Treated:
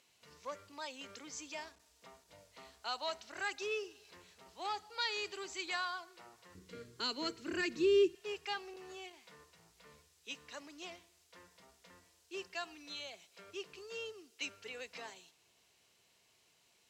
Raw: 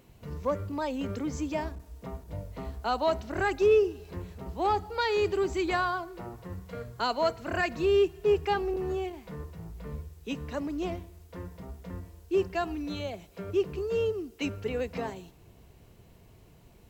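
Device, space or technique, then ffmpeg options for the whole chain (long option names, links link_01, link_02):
piezo pickup straight into a mixer: -filter_complex "[0:a]lowpass=5700,aderivative,asettb=1/sr,asplit=3[link_01][link_02][link_03];[link_01]atrim=end=6.554[link_04];[link_02]atrim=start=6.55:end=8.15,asetpts=PTS-STARTPTS,afade=type=in:duration=0.004:curve=qsin,afade=type=out:start_time=1.596:duration=0.004:curve=qsin,lowshelf=frequency=490:width_type=q:width=3:gain=12[link_05];[link_03]atrim=start=8.146[link_06];[link_04][link_05]acrossfade=duration=0.004:curve1=hsin:curve2=qsin[link_07];[link_07][link_06]acrossfade=duration=0.004:curve1=qsin:curve2=hsin,volume=5.5dB"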